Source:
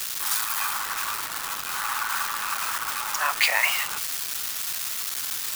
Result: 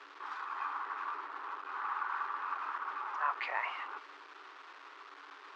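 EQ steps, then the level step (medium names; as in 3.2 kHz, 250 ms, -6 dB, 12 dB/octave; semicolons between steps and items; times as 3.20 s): rippled Chebyshev high-pass 280 Hz, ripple 9 dB; distance through air 71 m; tape spacing loss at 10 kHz 42 dB; 0.0 dB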